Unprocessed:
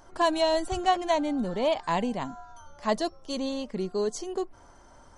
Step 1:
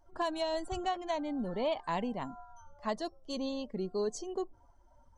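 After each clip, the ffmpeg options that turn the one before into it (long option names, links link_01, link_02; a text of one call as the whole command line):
ffmpeg -i in.wav -af "afftdn=noise_reduction=17:noise_floor=-46,alimiter=limit=-19dB:level=0:latency=1:release=458,volume=-5dB" out.wav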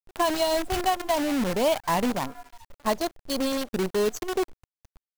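ffmpeg -i in.wav -af "afftdn=noise_reduction=16:noise_floor=-46,acrusher=bits=7:dc=4:mix=0:aa=0.000001,volume=9dB" out.wav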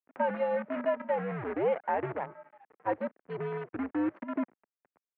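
ffmpeg -i in.wav -af "highpass=frequency=340:width_type=q:width=0.5412,highpass=frequency=340:width_type=q:width=1.307,lowpass=frequency=2200:width_type=q:width=0.5176,lowpass=frequency=2200:width_type=q:width=0.7071,lowpass=frequency=2200:width_type=q:width=1.932,afreqshift=-110,volume=-4.5dB" out.wav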